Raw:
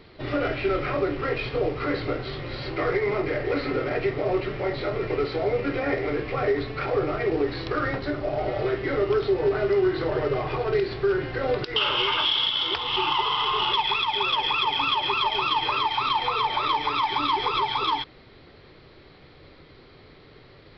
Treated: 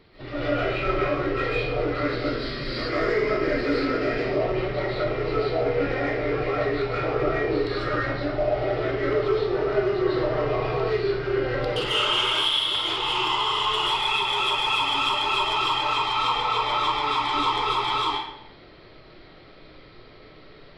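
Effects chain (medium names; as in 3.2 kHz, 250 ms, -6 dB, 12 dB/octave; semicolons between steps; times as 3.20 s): 2.05–4.21 s: graphic EQ with 31 bands 100 Hz -12 dB, 250 Hz +10 dB, 800 Hz -7 dB, 1.6 kHz +4 dB, 5 kHz +10 dB; saturation -18 dBFS, distortion -18 dB; reverberation RT60 0.75 s, pre-delay 105 ms, DRR -8 dB; trim -6 dB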